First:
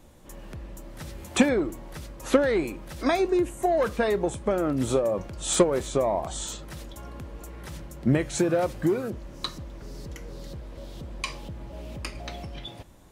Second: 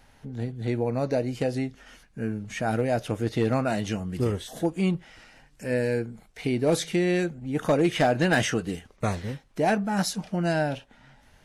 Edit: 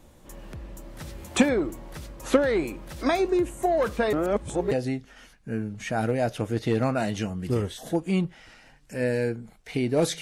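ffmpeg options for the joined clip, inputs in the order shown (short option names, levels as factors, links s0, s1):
-filter_complex "[0:a]apad=whole_dur=10.21,atrim=end=10.21,asplit=2[s0][s1];[s0]atrim=end=4.132[s2];[s1]atrim=start=4.128:end=4.712,asetpts=PTS-STARTPTS,areverse[s3];[1:a]atrim=start=1.408:end=6.91[s4];[s2][s3]acrossfade=d=0.004:c1=hsin:c2=hsin[s5];[s5][s4]acrossfade=d=0.004:c1=hsin:c2=hsin"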